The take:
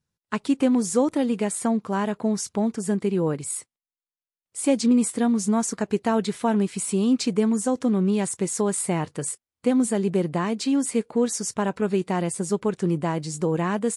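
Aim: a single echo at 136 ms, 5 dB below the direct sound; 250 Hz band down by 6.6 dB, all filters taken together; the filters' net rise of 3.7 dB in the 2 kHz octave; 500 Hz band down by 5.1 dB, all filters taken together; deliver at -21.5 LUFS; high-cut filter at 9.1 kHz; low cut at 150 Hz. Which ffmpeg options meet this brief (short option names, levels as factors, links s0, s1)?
-af "highpass=150,lowpass=9100,equalizer=f=250:t=o:g=-6,equalizer=f=500:t=o:g=-4.5,equalizer=f=2000:t=o:g=5,aecho=1:1:136:0.562,volume=2"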